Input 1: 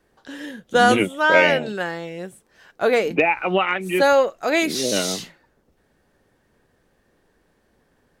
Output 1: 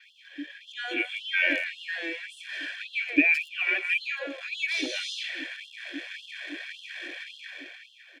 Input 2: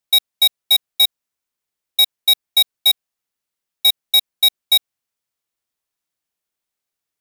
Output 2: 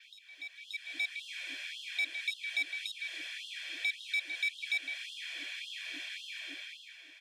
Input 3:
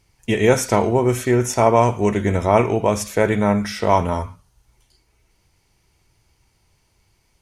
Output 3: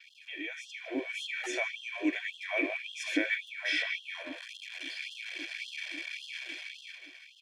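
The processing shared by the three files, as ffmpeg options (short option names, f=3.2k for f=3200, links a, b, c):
-filter_complex "[0:a]aeval=exprs='val(0)+0.5*0.0355*sgn(val(0))':c=same,acompressor=threshold=-25dB:ratio=2,asplit=3[a][b][c];[a]bandpass=f=270:t=q:w=8,volume=0dB[d];[b]bandpass=f=2.29k:t=q:w=8,volume=-6dB[e];[c]bandpass=f=3.01k:t=q:w=8,volume=-9dB[f];[d][e][f]amix=inputs=3:normalize=0,bandreject=f=60:t=h:w=6,bandreject=f=120:t=h:w=6,bandreject=f=180:t=h:w=6,bandreject=f=240:t=h:w=6,bandreject=f=300:t=h:w=6,bandreject=f=360:t=h:w=6,bandreject=f=420:t=h:w=6,bandreject=f=480:t=h:w=6,bandreject=f=540:t=h:w=6,aecho=1:1:1.2:0.96,dynaudnorm=f=120:g=13:m=14.5dB,acrusher=bits=10:mix=0:aa=0.000001,aemphasis=mode=reproduction:type=bsi,asplit=2[g][h];[h]adelay=160,highpass=300,lowpass=3.4k,asoftclip=type=hard:threshold=-15dB,volume=-7dB[i];[g][i]amix=inputs=2:normalize=0,adynamicequalizer=threshold=0.00158:dfrequency=9200:dqfactor=2.1:tfrequency=9200:tqfactor=2.1:attack=5:release=100:ratio=0.375:range=2.5:mode=boostabove:tftype=bell,afftfilt=real='re*gte(b*sr/1024,290*pow(2800/290,0.5+0.5*sin(2*PI*1.8*pts/sr)))':imag='im*gte(b*sr/1024,290*pow(2800/290,0.5+0.5*sin(2*PI*1.8*pts/sr)))':win_size=1024:overlap=0.75"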